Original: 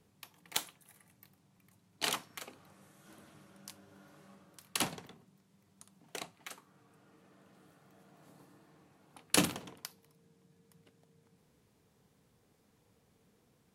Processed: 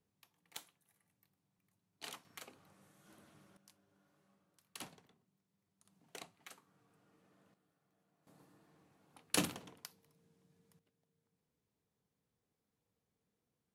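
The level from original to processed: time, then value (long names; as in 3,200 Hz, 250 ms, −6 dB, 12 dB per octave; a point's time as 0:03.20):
−15 dB
from 0:02.25 −6 dB
from 0:03.57 −16 dB
from 0:05.85 −8 dB
from 0:07.54 −18 dB
from 0:08.27 −6 dB
from 0:10.79 −17 dB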